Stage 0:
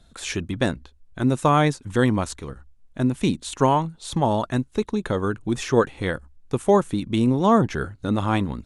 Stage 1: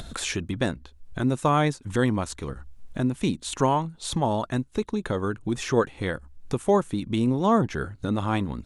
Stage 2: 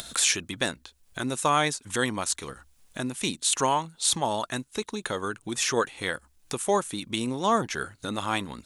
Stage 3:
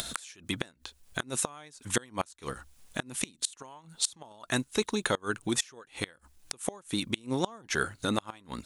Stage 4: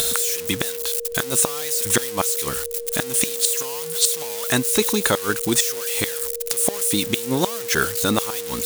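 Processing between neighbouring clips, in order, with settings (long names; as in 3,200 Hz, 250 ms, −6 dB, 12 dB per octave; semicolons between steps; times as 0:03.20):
upward compression, threshold −20 dBFS; level −3.5 dB
spectral tilt +3.5 dB per octave
gate with flip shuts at −16 dBFS, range −28 dB; level +3 dB
spike at every zero crossing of −25.5 dBFS; steady tone 470 Hz −38 dBFS; level +8.5 dB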